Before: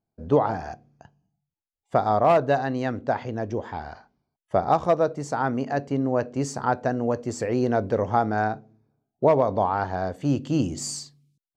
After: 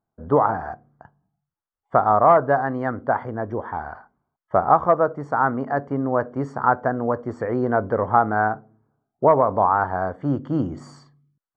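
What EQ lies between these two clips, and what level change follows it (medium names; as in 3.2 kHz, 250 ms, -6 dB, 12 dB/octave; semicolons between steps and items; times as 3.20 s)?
Savitzky-Golay filter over 41 samples; peaking EQ 1.2 kHz +10 dB 1.1 oct; 0.0 dB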